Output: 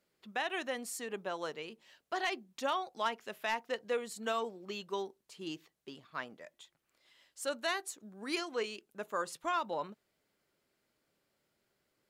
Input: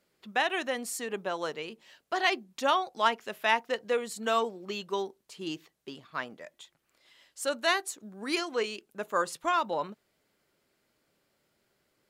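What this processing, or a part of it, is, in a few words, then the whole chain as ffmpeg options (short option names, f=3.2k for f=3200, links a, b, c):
clipper into limiter: -af "asoftclip=type=hard:threshold=-15dB,alimiter=limit=-18dB:level=0:latency=1:release=106,volume=-5.5dB"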